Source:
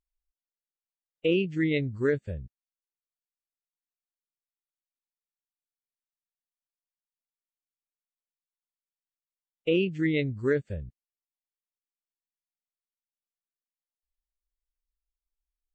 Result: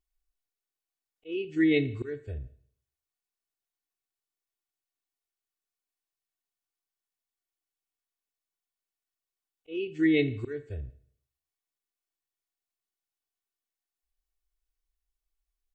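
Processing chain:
comb filter 2.7 ms, depth 82%
volume swells 448 ms
four-comb reverb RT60 0.6 s, combs from 28 ms, DRR 13.5 dB

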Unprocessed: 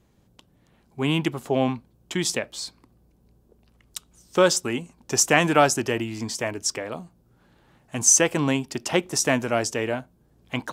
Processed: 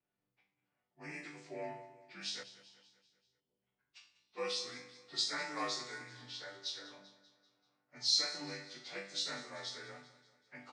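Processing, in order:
partials spread apart or drawn together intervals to 88%
low-pass that shuts in the quiet parts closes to 2,100 Hz, open at −21.5 dBFS
spectral tilt +3.5 dB per octave
resonators tuned to a chord G2 major, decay 0.48 s
healed spectral selection 0:02.46–0:02.79, 210–8,800 Hz after
repeating echo 194 ms, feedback 52%, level −16 dB
on a send at −16 dB: convolution reverb RT60 0.60 s, pre-delay 3 ms
on the sum: level −3 dB

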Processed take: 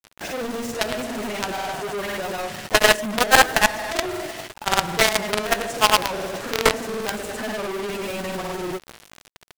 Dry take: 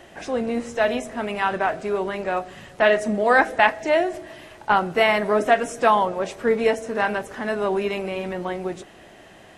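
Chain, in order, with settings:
tube saturation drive 7 dB, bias 0.3
repeating echo 144 ms, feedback 35%, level −15.5 dB
log-companded quantiser 2 bits
granular cloud, pitch spread up and down by 0 semitones
level −1 dB

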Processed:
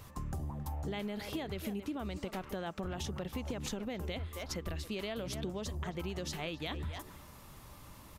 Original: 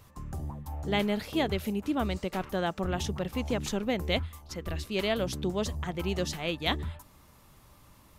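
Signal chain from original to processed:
far-end echo of a speakerphone 270 ms, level −14 dB
brickwall limiter −22 dBFS, peak gain reduction 8 dB
downward compressor 6 to 1, threshold −40 dBFS, peak gain reduction 13 dB
level +4 dB

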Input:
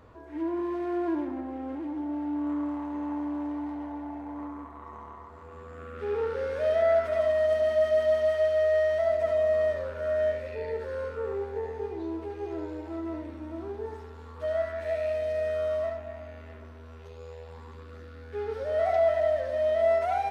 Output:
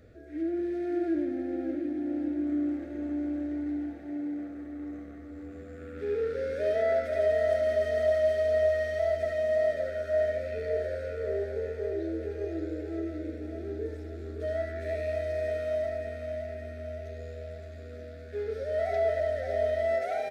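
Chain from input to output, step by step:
Butterworth band-reject 990 Hz, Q 1.1
parametric band 2,900 Hz −8 dB 0.27 octaves
on a send: repeating echo 569 ms, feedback 60%, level −6.5 dB

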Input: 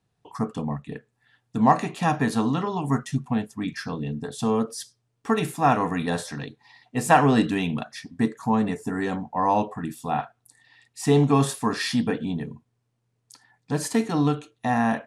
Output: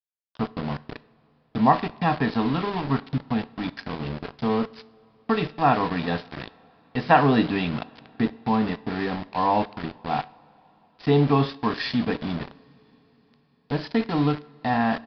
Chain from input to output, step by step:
centre clipping without the shift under −29 dBFS
coupled-rooms reverb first 0.48 s, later 4.8 s, from −19 dB, DRR 15.5 dB
downsampling to 11,025 Hz

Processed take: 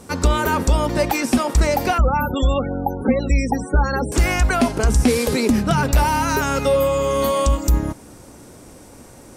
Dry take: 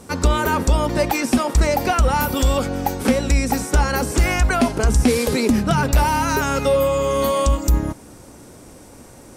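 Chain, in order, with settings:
0:01.98–0:04.12: spectral peaks only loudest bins 32

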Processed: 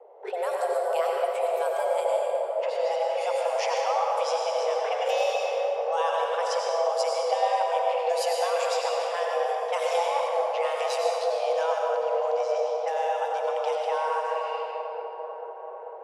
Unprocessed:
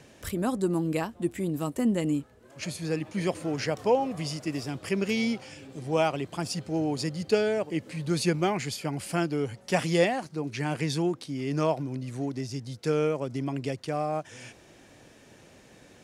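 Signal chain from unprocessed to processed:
low-pass that shuts in the quiet parts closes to 340 Hz, open at −25.5 dBFS
0:09.97–0:10.47: low-shelf EQ 480 Hz +9.5 dB
0:14.17–0:14.59: healed spectral selection 1,700–4,700 Hz before
downward compressor 4 to 1, threshold −34 dBFS, peak gain reduction 18 dB
frequency shifter +340 Hz
0:01.85–0:02.70: double-tracking delay 13 ms −7.5 dB
delay with a low-pass on its return 440 ms, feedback 69%, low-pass 770 Hz, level −3 dB
convolution reverb RT60 2.1 s, pre-delay 83 ms, DRR −1.5 dB
level +5 dB

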